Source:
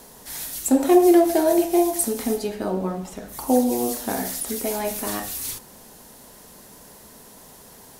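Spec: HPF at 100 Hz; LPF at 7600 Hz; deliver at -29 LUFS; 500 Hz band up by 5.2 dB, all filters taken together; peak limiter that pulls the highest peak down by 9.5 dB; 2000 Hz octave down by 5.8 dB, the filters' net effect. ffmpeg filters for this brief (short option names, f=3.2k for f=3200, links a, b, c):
-af "highpass=100,lowpass=7.6k,equalizer=f=500:t=o:g=8.5,equalizer=f=2k:t=o:g=-8,volume=-8dB,alimiter=limit=-17.5dB:level=0:latency=1"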